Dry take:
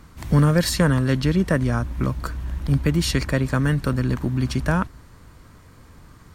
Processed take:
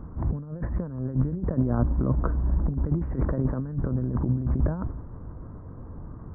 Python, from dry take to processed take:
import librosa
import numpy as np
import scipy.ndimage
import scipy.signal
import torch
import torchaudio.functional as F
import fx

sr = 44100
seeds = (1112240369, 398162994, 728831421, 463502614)

y = fx.peak_eq(x, sr, hz=90.0, db=-7.0, octaves=1.1, at=(1.56, 3.61))
y = fx.over_compress(y, sr, threshold_db=-26.0, ratio=-0.5)
y = scipy.ndimage.gaussian_filter1d(y, 8.7, mode='constant')
y = fx.sustainer(y, sr, db_per_s=110.0)
y = F.gain(torch.from_numpy(y), 2.0).numpy()